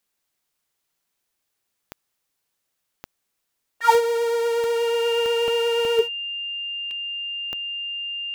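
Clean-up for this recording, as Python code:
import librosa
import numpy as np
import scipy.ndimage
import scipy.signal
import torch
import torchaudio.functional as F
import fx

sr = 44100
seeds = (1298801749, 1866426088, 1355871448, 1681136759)

y = fx.fix_declick_ar(x, sr, threshold=10.0)
y = fx.notch(y, sr, hz=2800.0, q=30.0)
y = fx.fix_interpolate(y, sr, at_s=(0.64, 1.62, 3.07, 5.48, 5.85, 6.91), length_ms=1.4)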